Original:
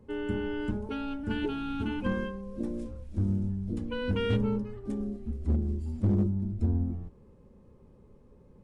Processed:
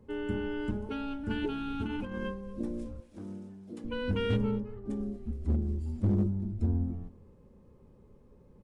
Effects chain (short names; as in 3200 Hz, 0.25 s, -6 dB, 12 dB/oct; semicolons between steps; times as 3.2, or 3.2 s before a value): 1.86–2.34 negative-ratio compressor -34 dBFS, ratio -1; 3–3.84 Bessel high-pass 410 Hz, order 2; 4.51–4.91 high shelf 2300 Hz -11 dB; echo 0.233 s -21 dB; gain -1.5 dB